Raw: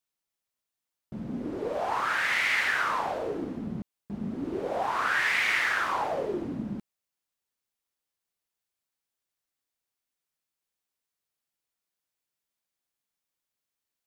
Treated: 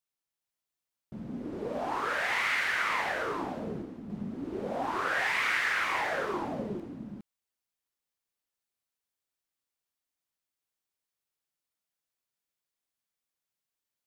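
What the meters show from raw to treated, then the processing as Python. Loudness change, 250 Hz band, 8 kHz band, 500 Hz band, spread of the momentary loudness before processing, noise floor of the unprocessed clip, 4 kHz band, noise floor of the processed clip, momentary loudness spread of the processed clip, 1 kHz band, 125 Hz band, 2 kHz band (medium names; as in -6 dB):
-2.5 dB, -2.5 dB, -2.5 dB, -2.5 dB, 14 LU, under -85 dBFS, -2.5 dB, under -85 dBFS, 14 LU, -2.5 dB, -2.5 dB, -2.5 dB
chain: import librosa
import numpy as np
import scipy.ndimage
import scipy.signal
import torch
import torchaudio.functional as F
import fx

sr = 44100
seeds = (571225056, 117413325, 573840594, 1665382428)

y = x + 10.0 ** (-4.0 / 20.0) * np.pad(x, (int(410 * sr / 1000.0), 0))[:len(x)]
y = y * librosa.db_to_amplitude(-4.0)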